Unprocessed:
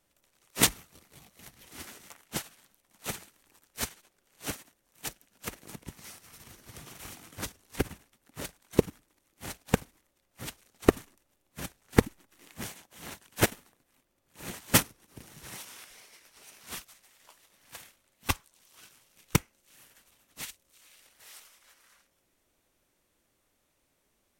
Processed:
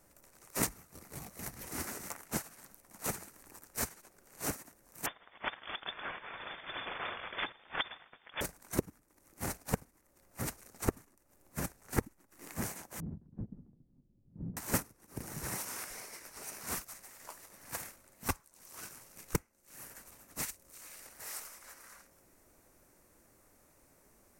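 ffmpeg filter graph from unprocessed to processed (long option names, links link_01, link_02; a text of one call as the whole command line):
ffmpeg -i in.wav -filter_complex "[0:a]asettb=1/sr,asplit=3[link_01][link_02][link_03];[link_01]atrim=end=5.064[link_04];[link_02]atrim=start=5.06:end=8.41,asetpts=PTS-STARTPTS,afade=type=in:duration=0.004:curve=qsin,afade=type=out:start_time=3.346:duration=0.004:curve=qsin,acontrast=71,lowpass=frequency=3100:width_type=q:width=0.5098,lowpass=frequency=3100:width_type=q:width=0.6013,lowpass=frequency=3100:width_type=q:width=0.9,lowpass=frequency=3100:width_type=q:width=2.563,afreqshift=-3600[link_05];[link_03]atrim=start=8.406[link_06];[link_04][link_05]acrossfade=duration=0.004:curve1=hsin:curve2=qsin[link_07];[link_07][link_06]acrossfade=duration=0.004:curve1=qsin:curve2=hsin,asettb=1/sr,asplit=3[link_08][link_09][link_10];[link_08]atrim=end=13.004[link_11];[link_09]atrim=start=13:end=14.57,asetpts=PTS-STARTPTS,afade=type=in:duration=0.004:curve=qsin,afade=type=out:start_time=1.566:duration=0.004:curve=qsin,lowpass=frequency=180:width_type=q:width=1.6,acompressor=threshold=-45dB:ratio=10:attack=3.2:release=140:knee=1:detection=peak[link_12];[link_10]atrim=start=14.566[link_13];[link_11][link_12]acrossfade=duration=0.004:curve1=hsin:curve2=qsin[link_14];[link_14][link_13]acrossfade=duration=0.004:curve1=qsin:curve2=hsin,equalizer=frequency=3300:width=1.7:gain=-14.5,acompressor=threshold=-46dB:ratio=3,volume=10dB" out.wav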